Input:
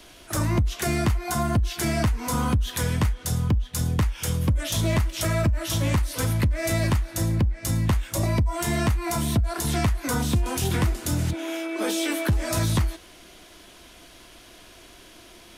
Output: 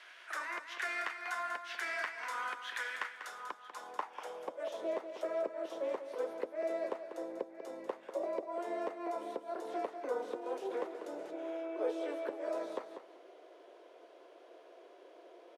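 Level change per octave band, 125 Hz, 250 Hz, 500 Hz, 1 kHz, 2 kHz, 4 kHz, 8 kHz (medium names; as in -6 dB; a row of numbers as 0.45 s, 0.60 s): under -40 dB, -19.5 dB, -5.5 dB, -9.0 dB, -7.5 dB, -18.5 dB, under -25 dB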